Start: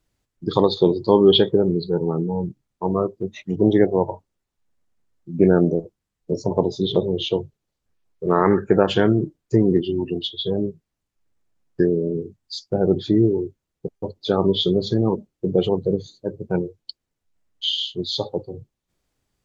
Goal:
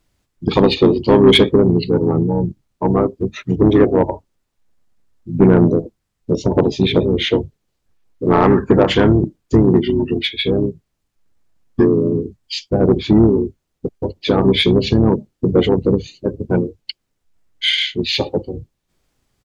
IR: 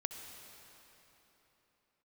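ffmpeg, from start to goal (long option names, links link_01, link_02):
-filter_complex "[0:a]asplit=3[link_01][link_02][link_03];[link_02]asetrate=22050,aresample=44100,atempo=2,volume=-18dB[link_04];[link_03]asetrate=29433,aresample=44100,atempo=1.49831,volume=-5dB[link_05];[link_01][link_04][link_05]amix=inputs=3:normalize=0,acontrast=82,volume=-1dB"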